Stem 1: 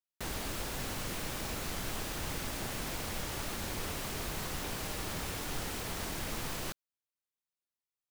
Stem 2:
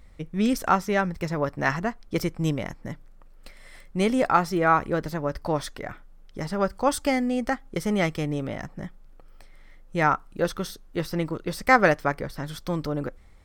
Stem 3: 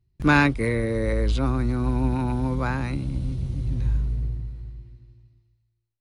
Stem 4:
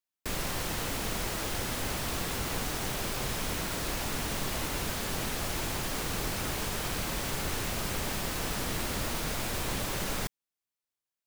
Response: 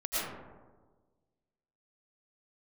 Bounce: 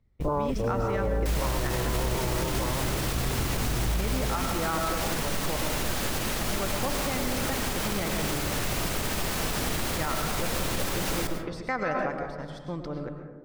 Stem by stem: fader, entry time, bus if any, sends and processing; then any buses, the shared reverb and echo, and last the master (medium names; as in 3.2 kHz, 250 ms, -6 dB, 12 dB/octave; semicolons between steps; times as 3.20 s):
-13.0 dB, 0.00 s, no send, none
-9.0 dB, 0.00 s, send -9.5 dB, low-pass 6.2 kHz; gate -37 dBFS, range -15 dB
+1.5 dB, 0.00 s, no send, comb filter that takes the minimum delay 2 ms; elliptic low-pass 1.1 kHz
+3.0 dB, 1.00 s, send -13 dB, none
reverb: on, RT60 1.4 s, pre-delay 70 ms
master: peak limiter -18.5 dBFS, peak gain reduction 9 dB